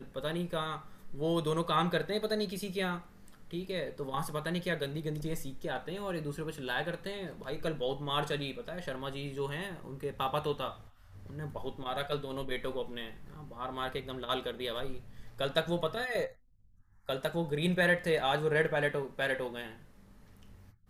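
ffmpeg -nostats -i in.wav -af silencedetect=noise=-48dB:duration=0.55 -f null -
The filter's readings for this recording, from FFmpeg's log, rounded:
silence_start: 16.32
silence_end: 17.09 | silence_duration: 0.76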